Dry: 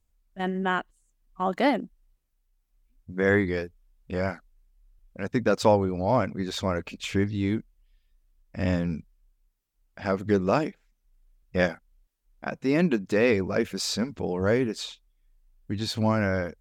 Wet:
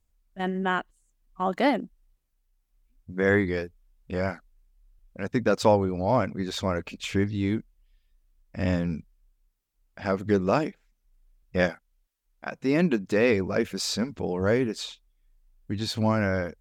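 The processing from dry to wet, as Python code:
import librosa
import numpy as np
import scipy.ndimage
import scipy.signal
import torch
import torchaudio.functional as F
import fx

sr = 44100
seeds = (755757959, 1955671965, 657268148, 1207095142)

y = fx.low_shelf(x, sr, hz=500.0, db=-7.5, at=(11.7, 12.58))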